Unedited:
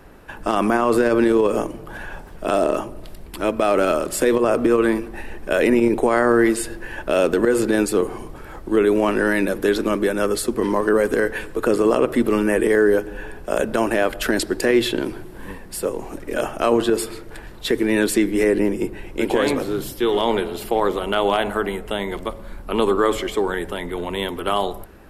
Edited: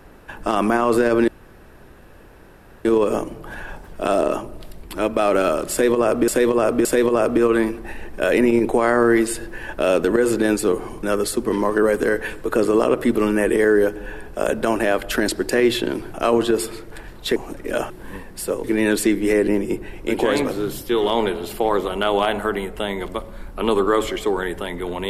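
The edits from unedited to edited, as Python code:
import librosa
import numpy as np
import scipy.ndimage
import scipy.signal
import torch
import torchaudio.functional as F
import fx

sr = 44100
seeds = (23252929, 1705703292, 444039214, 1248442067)

y = fx.edit(x, sr, fx.insert_room_tone(at_s=1.28, length_s=1.57),
    fx.repeat(start_s=4.14, length_s=0.57, count=3),
    fx.cut(start_s=8.32, length_s=1.82),
    fx.swap(start_s=15.25, length_s=0.74, other_s=16.53, other_length_s=1.22), tone=tone)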